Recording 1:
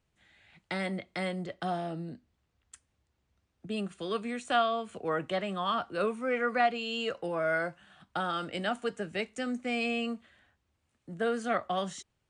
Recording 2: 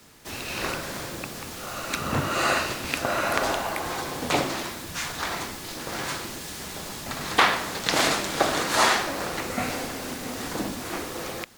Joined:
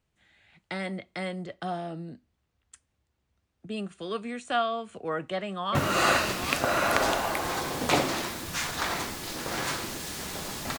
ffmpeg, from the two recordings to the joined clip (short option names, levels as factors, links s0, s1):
-filter_complex "[0:a]apad=whole_dur=10.78,atrim=end=10.78,atrim=end=5.752[s0];[1:a]atrim=start=2.158:end=7.19[s1];[s0][s1]acrossfade=d=0.004:c1=hsin:c2=hsin,asplit=2[s2][s3];[s3]afade=t=in:st=5.32:d=0.01,afade=t=out:st=5.75:d=0.01,aecho=0:1:400|800|1200|1600|2000|2400|2800|3200|3600|4000:0.707946|0.460165|0.299107|0.19442|0.126373|0.0821423|0.0533925|0.0347051|0.0225583|0.0146629[s4];[s2][s4]amix=inputs=2:normalize=0"